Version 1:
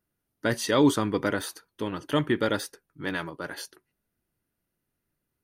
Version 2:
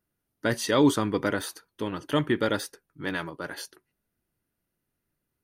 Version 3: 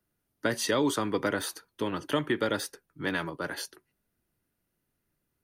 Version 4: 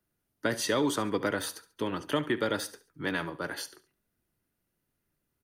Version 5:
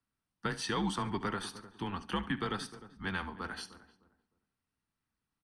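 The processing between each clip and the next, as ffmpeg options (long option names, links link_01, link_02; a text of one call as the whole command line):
ffmpeg -i in.wav -af anull out.wav
ffmpeg -i in.wav -filter_complex "[0:a]acrossover=split=160|340[link_01][link_02][link_03];[link_01]acompressor=threshold=-45dB:ratio=4[link_04];[link_02]acompressor=threshold=-36dB:ratio=4[link_05];[link_03]acompressor=threshold=-27dB:ratio=4[link_06];[link_04][link_05][link_06]amix=inputs=3:normalize=0,volume=1.5dB" out.wav
ffmpeg -i in.wav -af "aecho=1:1:70|140|210:0.141|0.0494|0.0173,volume=-1dB" out.wav
ffmpeg -i in.wav -filter_complex "[0:a]highpass=100,equalizer=frequency=120:width_type=q:width=4:gain=-9,equalizer=frequency=440:width_type=q:width=4:gain=-4,equalizer=frequency=640:width_type=q:width=4:gain=-8,equalizer=frequency=1100:width_type=q:width=4:gain=4,equalizer=frequency=6900:width_type=q:width=4:gain=-9,lowpass=frequency=9000:width=0.5412,lowpass=frequency=9000:width=1.3066,afreqshift=-93,asplit=2[link_01][link_02];[link_02]adelay=305,lowpass=frequency=950:poles=1,volume=-14dB,asplit=2[link_03][link_04];[link_04]adelay=305,lowpass=frequency=950:poles=1,volume=0.27,asplit=2[link_05][link_06];[link_06]adelay=305,lowpass=frequency=950:poles=1,volume=0.27[link_07];[link_01][link_03][link_05][link_07]amix=inputs=4:normalize=0,volume=-4dB" out.wav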